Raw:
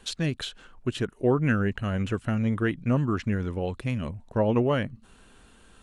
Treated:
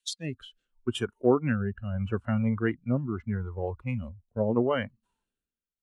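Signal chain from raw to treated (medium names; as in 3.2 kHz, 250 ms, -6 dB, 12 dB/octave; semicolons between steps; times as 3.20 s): rotary cabinet horn 0.75 Hz; spectral noise reduction 18 dB; three bands expanded up and down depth 70%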